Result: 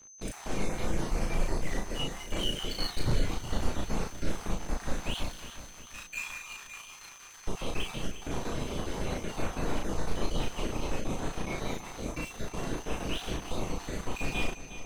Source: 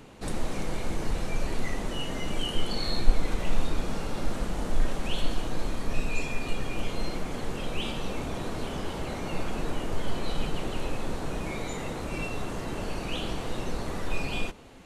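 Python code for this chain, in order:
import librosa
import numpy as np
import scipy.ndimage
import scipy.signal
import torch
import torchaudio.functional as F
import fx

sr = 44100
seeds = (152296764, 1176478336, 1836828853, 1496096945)

y = fx.spec_dropout(x, sr, seeds[0], share_pct=34)
y = fx.steep_highpass(y, sr, hz=1000.0, slope=36, at=(5.28, 7.46))
y = np.sign(y) * np.maximum(np.abs(y) - 10.0 ** (-44.0 / 20.0), 0.0)
y = y + 10.0 ** (-54.0 / 20.0) * np.sin(2.0 * np.pi * 6200.0 * np.arange(len(y)) / sr)
y = 10.0 ** (-21.0 / 20.0) * (np.abs((y / 10.0 ** (-21.0 / 20.0) + 3.0) % 4.0 - 2.0) - 1.0)
y = fx.doubler(y, sr, ms=36.0, db=-2.5)
y = fx.echo_feedback(y, sr, ms=359, feedback_pct=54, wet_db=-13.0)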